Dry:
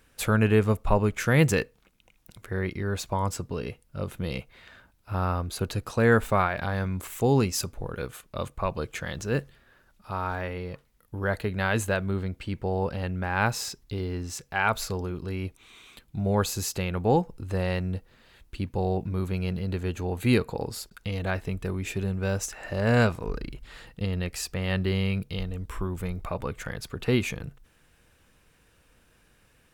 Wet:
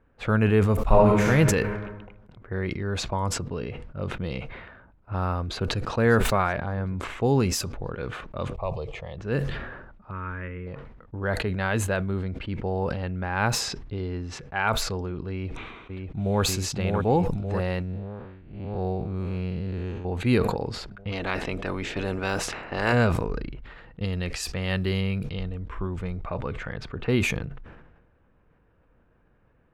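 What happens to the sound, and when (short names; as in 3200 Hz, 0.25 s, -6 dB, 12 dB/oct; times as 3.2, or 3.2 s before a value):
0.82–1.26 reverb throw, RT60 1.2 s, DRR -4.5 dB
5.46–5.94 echo throw 0.58 s, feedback 50%, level -10.5 dB
6.56–6.98 LPF 1100 Hz 6 dB/oct
8.53–9.18 fixed phaser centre 630 Hz, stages 4
10.11–10.67 fixed phaser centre 1800 Hz, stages 4
15.3–16.42 echo throw 0.59 s, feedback 65%, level -4 dB
17.82–20.05 time blur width 0.18 s
21.11–22.92 spectral limiter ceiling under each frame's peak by 18 dB
23.64–25.01 high shelf 2800 Hz +7.5 dB
whole clip: low-pass opened by the level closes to 1200 Hz, open at -22.5 dBFS; high shelf 4600 Hz -8 dB; sustainer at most 45 dB/s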